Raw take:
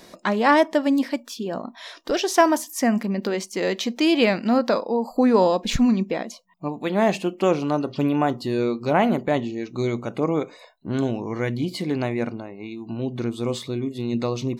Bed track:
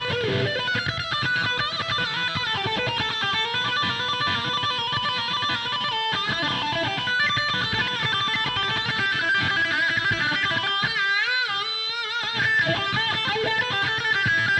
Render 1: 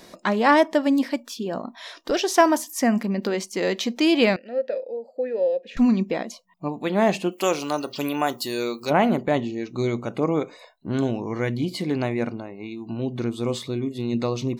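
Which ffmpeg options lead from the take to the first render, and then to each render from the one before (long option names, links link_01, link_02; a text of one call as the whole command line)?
ffmpeg -i in.wav -filter_complex "[0:a]asettb=1/sr,asplit=3[link_01][link_02][link_03];[link_01]atrim=end=4.364[link_04];[link_02]atrim=start=4.36:end=5.77,asetpts=PTS-STARTPTS,afade=type=in:duration=0.004:curve=qsin,afade=type=out:start_time=1.406:duration=0.004:curve=qsin,asplit=3[link_05][link_06][link_07];[link_05]bandpass=frequency=530:width_type=q:width=8,volume=0dB[link_08];[link_06]bandpass=frequency=1840:width_type=q:width=8,volume=-6dB[link_09];[link_07]bandpass=frequency=2480:width_type=q:width=8,volume=-9dB[link_10];[link_08][link_09][link_10]amix=inputs=3:normalize=0[link_11];[link_03]atrim=start=5.766[link_12];[link_04][link_11]acrossfade=duration=0.004:curve1=hsin:curve2=qsin[link_13];[link_13][link_12]acrossfade=duration=0.004:curve1=qsin:curve2=hsin,asplit=3[link_14][link_15][link_16];[link_14]afade=type=out:start_time=7.31:duration=0.02[link_17];[link_15]aemphasis=mode=production:type=riaa,afade=type=in:start_time=7.31:duration=0.02,afade=type=out:start_time=8.89:duration=0.02[link_18];[link_16]afade=type=in:start_time=8.89:duration=0.02[link_19];[link_17][link_18][link_19]amix=inputs=3:normalize=0" out.wav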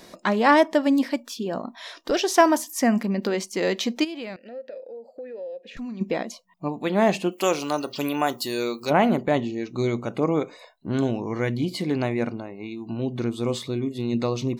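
ffmpeg -i in.wav -filter_complex "[0:a]asplit=3[link_01][link_02][link_03];[link_01]afade=type=out:start_time=4.03:duration=0.02[link_04];[link_02]acompressor=threshold=-39dB:ratio=2.5:attack=3.2:release=140:knee=1:detection=peak,afade=type=in:start_time=4.03:duration=0.02,afade=type=out:start_time=6:duration=0.02[link_05];[link_03]afade=type=in:start_time=6:duration=0.02[link_06];[link_04][link_05][link_06]amix=inputs=3:normalize=0" out.wav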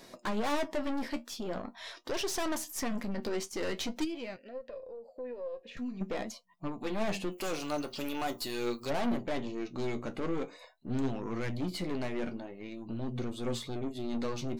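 ffmpeg -i in.wav -af "aeval=exprs='(tanh(20*val(0)+0.45)-tanh(0.45))/20':channel_layout=same,flanger=delay=7.1:depth=6.6:regen=52:speed=0.45:shape=triangular" out.wav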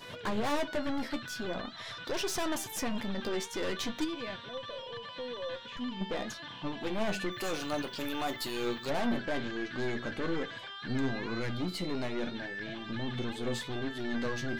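ffmpeg -i in.wav -i bed.wav -filter_complex "[1:a]volume=-20.5dB[link_01];[0:a][link_01]amix=inputs=2:normalize=0" out.wav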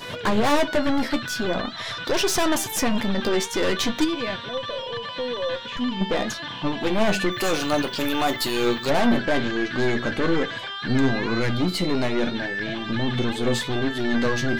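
ffmpeg -i in.wav -af "volume=11.5dB" out.wav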